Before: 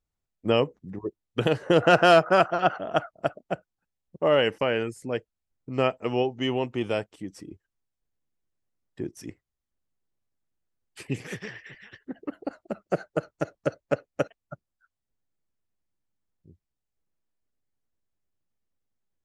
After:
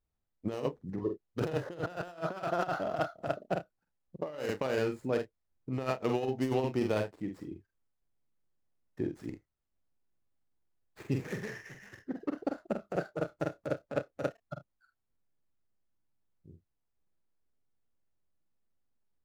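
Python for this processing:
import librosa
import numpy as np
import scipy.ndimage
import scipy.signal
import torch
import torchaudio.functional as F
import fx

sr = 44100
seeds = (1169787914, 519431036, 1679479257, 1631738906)

y = scipy.ndimage.median_filter(x, 15, mode='constant')
y = fx.room_early_taps(y, sr, ms=(46, 76), db=(-6.0, -17.5))
y = fx.over_compress(y, sr, threshold_db=-26.0, ratio=-0.5)
y = y * 10.0 ** (-5.0 / 20.0)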